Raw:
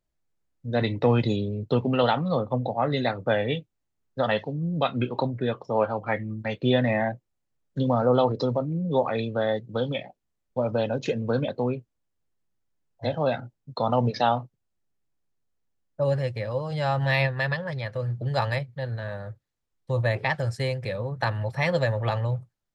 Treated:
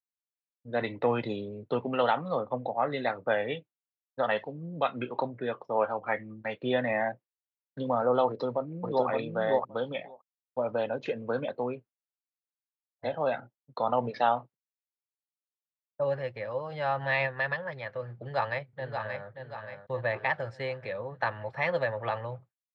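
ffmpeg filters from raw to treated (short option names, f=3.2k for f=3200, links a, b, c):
-filter_complex "[0:a]asplit=2[a][b];[b]afade=t=in:st=8.26:d=0.01,afade=t=out:st=9.07:d=0.01,aecho=0:1:570|1140:0.841395|0.0841395[c];[a][c]amix=inputs=2:normalize=0,asplit=2[d][e];[e]afade=t=in:st=18.15:d=0.01,afade=t=out:st=19.28:d=0.01,aecho=0:1:580|1160|1740|2320|2900:0.501187|0.225534|0.10149|0.0456707|0.0205518[f];[d][f]amix=inputs=2:normalize=0,lowpass=2.3k,agate=range=-33dB:threshold=-37dB:ratio=3:detection=peak,highpass=f=640:p=1"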